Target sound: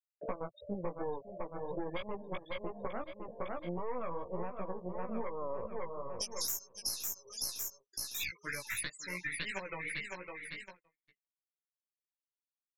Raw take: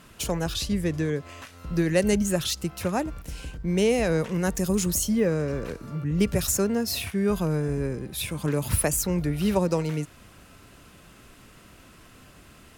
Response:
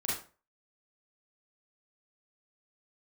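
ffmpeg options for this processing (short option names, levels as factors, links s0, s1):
-af "asoftclip=type=hard:threshold=0.2,asetnsamples=n=441:p=0,asendcmd='5.67 bandpass f 5800;7.92 bandpass f 2000',bandpass=f=590:t=q:w=3.8:csg=0,aeval=exprs='0.15*(cos(1*acos(clip(val(0)/0.15,-1,1)))-cos(1*PI/2))+0.0211*(cos(5*acos(clip(val(0)/0.15,-1,1)))-cos(5*PI/2))+0.0596*(cos(6*acos(clip(val(0)/0.15,-1,1)))-cos(6*PI/2))+0.00668*(cos(7*acos(clip(val(0)/0.15,-1,1)))-cos(7*PI/2))+0.00188*(cos(8*acos(clip(val(0)/0.15,-1,1)))-cos(8*PI/2))':c=same,afftfilt=real='re*gte(hypot(re,im),0.0126)':imag='im*gte(hypot(re,im),0.0126)':win_size=1024:overlap=0.75,aecho=1:1:555|1110|1665|2220:0.282|0.11|0.0429|0.0167,alimiter=limit=0.075:level=0:latency=1:release=375,agate=range=0.00112:threshold=0.00126:ratio=16:detection=peak,aemphasis=mode=production:type=75fm,acompressor=threshold=0.00562:ratio=5,flanger=delay=15:depth=2.6:speed=2.8,volume=3.98"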